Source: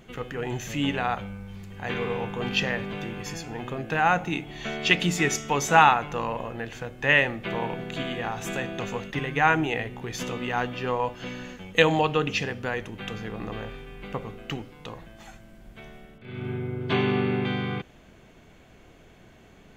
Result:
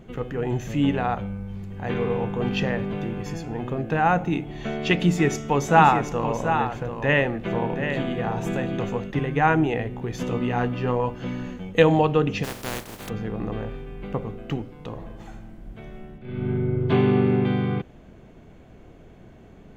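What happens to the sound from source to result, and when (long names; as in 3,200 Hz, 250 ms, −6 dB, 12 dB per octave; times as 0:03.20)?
0:05.03–0:08.89: single-tap delay 733 ms −8 dB
0:10.30–0:11.69: double-tracking delay 17 ms −6 dB
0:12.43–0:13.08: compressing power law on the bin magnitudes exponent 0.19
0:14.87–0:16.72: thrown reverb, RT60 1.3 s, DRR 6 dB
whole clip: tilt shelving filter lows +6.5 dB, about 1,100 Hz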